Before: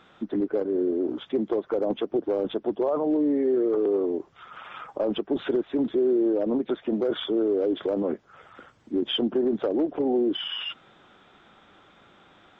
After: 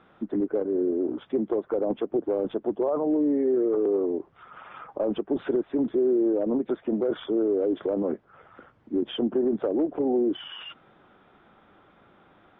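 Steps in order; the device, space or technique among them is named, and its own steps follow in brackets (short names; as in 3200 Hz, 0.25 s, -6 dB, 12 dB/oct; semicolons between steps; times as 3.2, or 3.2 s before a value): phone in a pocket (LPF 3200 Hz 12 dB/oct; high shelf 2200 Hz -9.5 dB)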